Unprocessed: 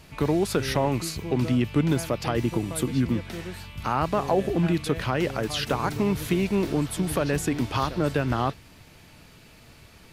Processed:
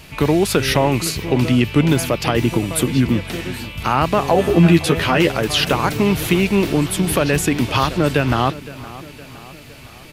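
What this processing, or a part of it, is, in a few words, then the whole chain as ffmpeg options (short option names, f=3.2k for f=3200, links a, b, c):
presence and air boost: -filter_complex "[0:a]equalizer=f=2.7k:t=o:w=0.89:g=5.5,highshelf=f=9.7k:g=6,asettb=1/sr,asplit=3[a][b][c];[a]atrim=end=4.344[d];[b]atrim=start=4.34:end=5.32,asetpts=PTS-STARTPTS,afade=t=in:d=0.004:c=qsin,afade=t=out:st=0.976:d=0.004:c=qsin,asplit=2[e][f];[f]adelay=12,volume=-2.5dB[g];[e][g]amix=inputs=2:normalize=0,atrim=end_sample=43218[h];[c]atrim=start=5.316[i];[d][h]acrossfade=d=0.004:c1=hsin:c2=qsin[j];[j][i]acrossfade=d=0.004:c1=qsin:c2=hsin,asplit=2[k][l];[l]adelay=514,lowpass=f=4k:p=1,volume=-17.5dB,asplit=2[m][n];[n]adelay=514,lowpass=f=4k:p=1,volume=0.55,asplit=2[o][p];[p]adelay=514,lowpass=f=4k:p=1,volume=0.55,asplit=2[q][r];[r]adelay=514,lowpass=f=4k:p=1,volume=0.55,asplit=2[s][t];[t]adelay=514,lowpass=f=4k:p=1,volume=0.55[u];[k][m][o][q][s][u]amix=inputs=6:normalize=0,volume=7.5dB"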